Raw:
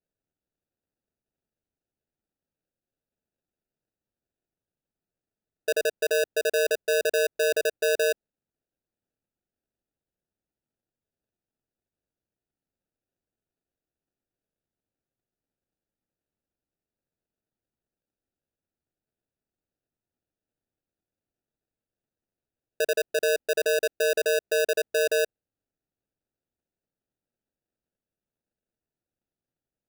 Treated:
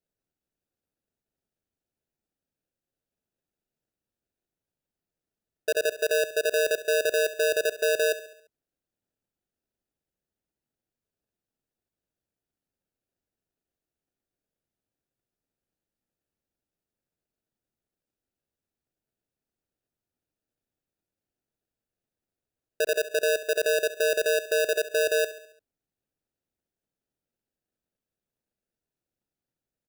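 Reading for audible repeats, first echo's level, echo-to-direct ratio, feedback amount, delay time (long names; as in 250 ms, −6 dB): 4, −14.5 dB, −13.0 dB, 51%, 69 ms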